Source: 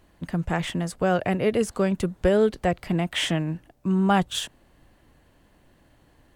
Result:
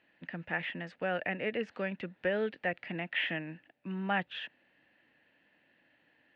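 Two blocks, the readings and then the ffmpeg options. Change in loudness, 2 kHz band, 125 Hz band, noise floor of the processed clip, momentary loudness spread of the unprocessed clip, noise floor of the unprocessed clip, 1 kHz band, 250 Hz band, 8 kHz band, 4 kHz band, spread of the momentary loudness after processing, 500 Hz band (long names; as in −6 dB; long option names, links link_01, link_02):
−11.0 dB, −2.0 dB, −16.5 dB, −71 dBFS, 9 LU, −60 dBFS, −11.0 dB, −15.0 dB, below −35 dB, −11.0 dB, 11 LU, −12.0 dB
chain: -filter_complex "[0:a]highpass=270,equalizer=frequency=390:width_type=q:width=4:gain=-7,equalizer=frequency=700:width_type=q:width=4:gain=-3,equalizer=frequency=1100:width_type=q:width=4:gain=-9,equalizer=frequency=1800:width_type=q:width=4:gain=10,equalizer=frequency=2600:width_type=q:width=4:gain=9,lowpass=frequency=3800:width=0.5412,lowpass=frequency=3800:width=1.3066,acrossover=split=2900[link_01][link_02];[link_02]acompressor=threshold=-46dB:ratio=4:attack=1:release=60[link_03];[link_01][link_03]amix=inputs=2:normalize=0,volume=-8dB"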